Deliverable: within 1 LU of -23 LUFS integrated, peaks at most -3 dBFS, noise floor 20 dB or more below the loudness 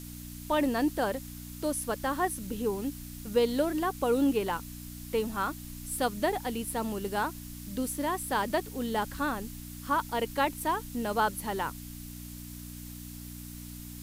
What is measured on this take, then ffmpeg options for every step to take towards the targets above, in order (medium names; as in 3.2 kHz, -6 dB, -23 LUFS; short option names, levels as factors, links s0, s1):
hum 60 Hz; highest harmonic 300 Hz; hum level -42 dBFS; noise floor -43 dBFS; noise floor target -51 dBFS; loudness -31.0 LUFS; peak level -14.0 dBFS; loudness target -23.0 LUFS
-> -af "bandreject=f=60:t=h:w=4,bandreject=f=120:t=h:w=4,bandreject=f=180:t=h:w=4,bandreject=f=240:t=h:w=4,bandreject=f=300:t=h:w=4"
-af "afftdn=nr=8:nf=-43"
-af "volume=2.51"